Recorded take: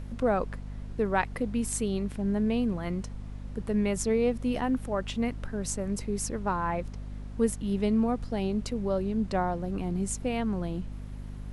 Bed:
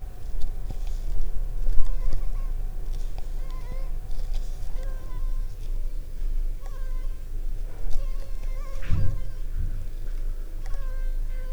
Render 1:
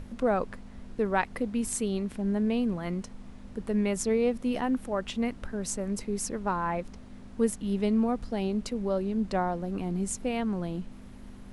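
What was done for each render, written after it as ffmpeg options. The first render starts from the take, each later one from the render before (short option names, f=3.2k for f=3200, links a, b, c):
-af "bandreject=f=50:t=h:w=6,bandreject=f=100:t=h:w=6,bandreject=f=150:t=h:w=6"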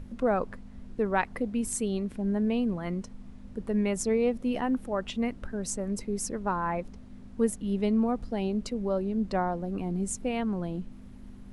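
-af "afftdn=nr=6:nf=-46"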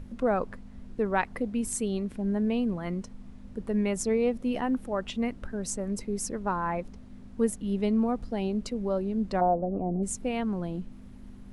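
-filter_complex "[0:a]asplit=3[a][b][c];[a]afade=t=out:st=9.4:d=0.02[d];[b]lowpass=f=650:t=q:w=3.8,afade=t=in:st=9.4:d=0.02,afade=t=out:st=10.02:d=0.02[e];[c]afade=t=in:st=10.02:d=0.02[f];[d][e][f]amix=inputs=3:normalize=0"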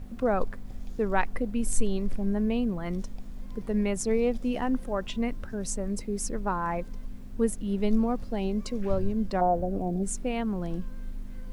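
-filter_complex "[1:a]volume=-9.5dB[a];[0:a][a]amix=inputs=2:normalize=0"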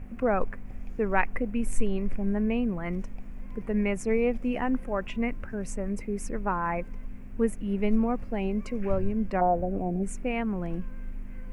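-af "highshelf=f=3k:t=q:w=3:g=-7.5"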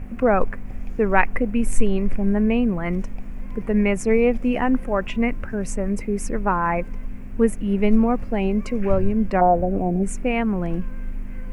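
-af "volume=7.5dB"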